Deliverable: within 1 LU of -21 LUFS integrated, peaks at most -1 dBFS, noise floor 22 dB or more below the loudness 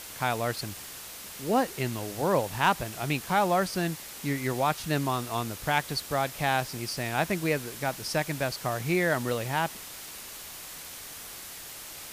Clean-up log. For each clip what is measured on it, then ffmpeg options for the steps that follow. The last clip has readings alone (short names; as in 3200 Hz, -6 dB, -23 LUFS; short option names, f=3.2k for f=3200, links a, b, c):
noise floor -43 dBFS; noise floor target -52 dBFS; loudness -30.0 LUFS; peak -11.0 dBFS; loudness target -21.0 LUFS
-> -af "afftdn=nr=9:nf=-43"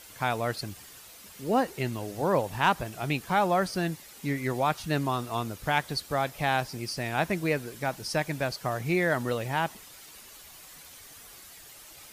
noise floor -49 dBFS; noise floor target -51 dBFS
-> -af "afftdn=nr=6:nf=-49"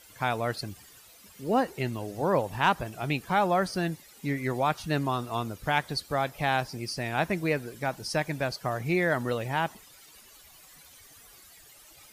noise floor -54 dBFS; loudness -29.0 LUFS; peak -11.0 dBFS; loudness target -21.0 LUFS
-> -af "volume=8dB"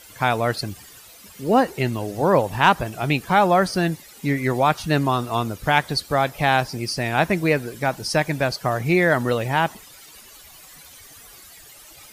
loudness -21.0 LUFS; peak -3.0 dBFS; noise floor -46 dBFS